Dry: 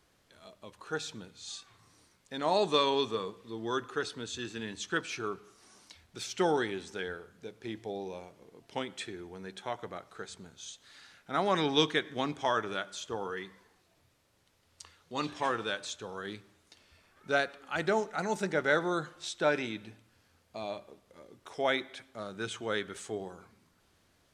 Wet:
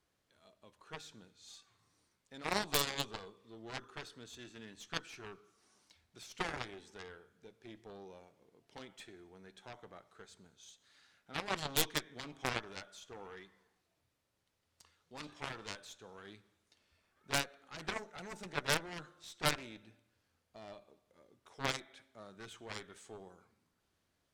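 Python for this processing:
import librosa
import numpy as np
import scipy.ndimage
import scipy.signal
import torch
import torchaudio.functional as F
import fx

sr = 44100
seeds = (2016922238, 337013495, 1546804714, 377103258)

y = fx.rev_schroeder(x, sr, rt60_s=0.93, comb_ms=29, drr_db=19.0)
y = fx.cheby_harmonics(y, sr, harmonics=(2, 3, 4), levels_db=(-6, -9, -20), full_scale_db=-11.5)
y = 10.0 ** (-28.5 / 20.0) * (np.abs((y / 10.0 ** (-28.5 / 20.0) + 3.0) % 4.0 - 2.0) - 1.0)
y = y * 10.0 ** (12.0 / 20.0)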